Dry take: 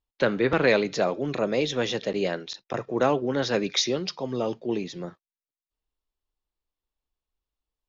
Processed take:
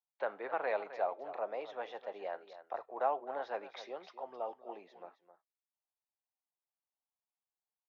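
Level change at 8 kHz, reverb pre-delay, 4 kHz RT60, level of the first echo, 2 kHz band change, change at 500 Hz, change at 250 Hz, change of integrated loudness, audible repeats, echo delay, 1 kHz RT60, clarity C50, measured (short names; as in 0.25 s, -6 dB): n/a, none, none, -13.0 dB, -15.5 dB, -13.5 dB, -27.5 dB, -14.0 dB, 1, 0.263 s, none, none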